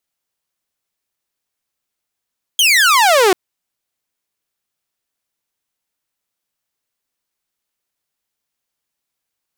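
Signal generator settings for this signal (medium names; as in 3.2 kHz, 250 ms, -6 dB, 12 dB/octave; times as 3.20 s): laser zap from 3.3 kHz, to 350 Hz, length 0.74 s saw, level -6 dB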